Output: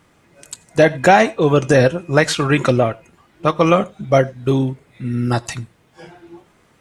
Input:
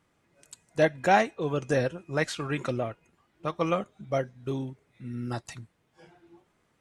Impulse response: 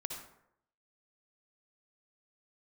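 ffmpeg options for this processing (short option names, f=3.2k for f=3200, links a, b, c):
-filter_complex "[0:a]asettb=1/sr,asplit=3[a][b][c];[a]atrim=end=4.394[d];[b]atrim=start=4.39:end=5.41,asetpts=PTS-STARTPTS,afade=t=in:d=0.004:c=qsin,afade=t=out:st=1.016:d=0.004:c=qsin,bandreject=f=5.9k:w=11[e];[c]atrim=start=5.406[f];[d][e]acrossfade=d=0.004:c1=hsin:c2=qsin[g];[g][f]acrossfade=d=0.004:c1=qsin:c2=hsin,asplit=2[h][i];[1:a]atrim=start_sample=2205,atrim=end_sample=3528,adelay=23[j];[i][j]afir=irnorm=-1:irlink=0,volume=-17dB[k];[h][k]amix=inputs=2:normalize=0,alimiter=level_in=16dB:limit=-1dB:release=50:level=0:latency=1,volume=-1dB"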